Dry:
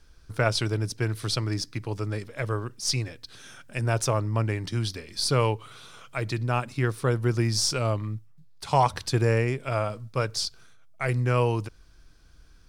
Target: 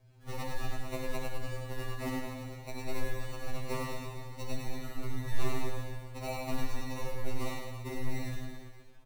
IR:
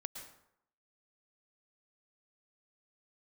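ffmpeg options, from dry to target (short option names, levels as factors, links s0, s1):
-filter_complex "[0:a]bass=f=250:g=1,treble=f=4000:g=11,acompressor=threshold=0.0562:ratio=5,aresample=16000,acrusher=bits=5:mode=log:mix=0:aa=0.000001,aresample=44100,aphaser=in_gain=1:out_gain=1:delay=3.3:decay=0.57:speed=1.2:type=sinusoidal,atempo=1.4,acrossover=split=200|1100[s0][s1][s2];[s1]aeval=exprs='max(val(0),0)':c=same[s3];[s0][s3][s2]amix=inputs=3:normalize=0,acrusher=samples=26:mix=1:aa=0.000001,afreqshift=-120,asplit=2[s4][s5];[s5]adelay=31,volume=0.251[s6];[s4][s6]amix=inputs=2:normalize=0,aecho=1:1:100|210|331|464.1|610.5:0.631|0.398|0.251|0.158|0.1[s7];[1:a]atrim=start_sample=2205,asetrate=88200,aresample=44100[s8];[s7][s8]afir=irnorm=-1:irlink=0,afftfilt=real='re*2.45*eq(mod(b,6),0)':imag='im*2.45*eq(mod(b,6),0)':win_size=2048:overlap=0.75,volume=1.26"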